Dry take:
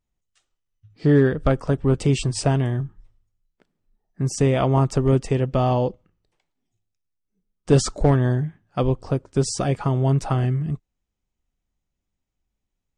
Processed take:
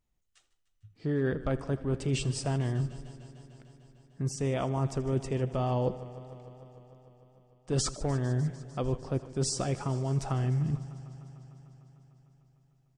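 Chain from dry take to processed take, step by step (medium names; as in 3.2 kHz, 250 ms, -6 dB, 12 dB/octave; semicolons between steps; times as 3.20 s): reverse; compression 6:1, threshold -27 dBFS, peak gain reduction 15.5 dB; reverse; delay 80 ms -19 dB; modulated delay 150 ms, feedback 79%, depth 61 cents, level -18 dB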